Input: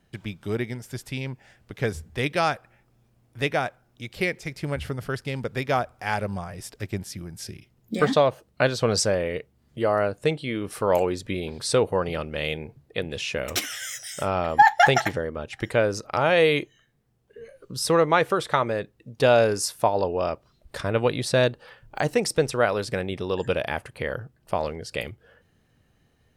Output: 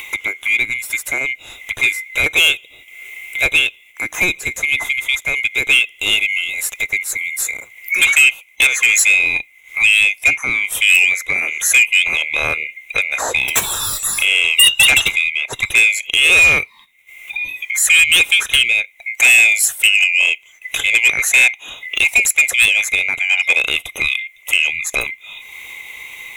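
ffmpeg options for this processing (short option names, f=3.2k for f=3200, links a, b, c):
-filter_complex "[0:a]afftfilt=real='real(if(lt(b,920),b+92*(1-2*mod(floor(b/92),2)),b),0)':imag='imag(if(lt(b,920),b+92*(1-2*mod(floor(b/92),2)),b),0)':win_size=2048:overlap=0.75,asplit=2[a][b];[b]aeval=exprs='0.708*sin(PI/2*3.98*val(0)/0.708)':c=same,volume=-6dB[c];[a][c]amix=inputs=2:normalize=0,equalizer=f=190:w=1.3:g=-9,acompressor=mode=upward:threshold=-14dB:ratio=2.5,aexciter=amount=1.2:drive=4.6:freq=2.5k,agate=range=-10dB:threshold=-40dB:ratio=16:detection=peak,volume=-3dB"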